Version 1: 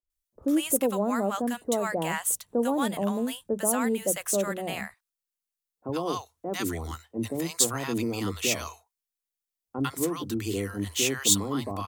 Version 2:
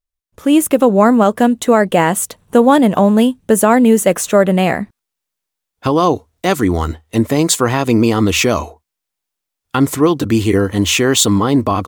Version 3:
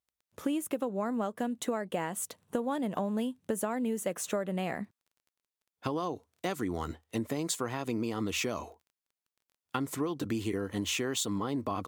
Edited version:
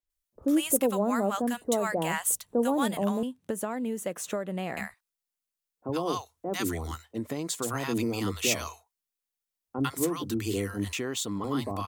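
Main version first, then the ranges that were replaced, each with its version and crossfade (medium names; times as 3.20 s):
1
3.23–4.77 s: from 3
7.17–7.65 s: from 3, crossfade 0.06 s
10.93–11.44 s: from 3
not used: 2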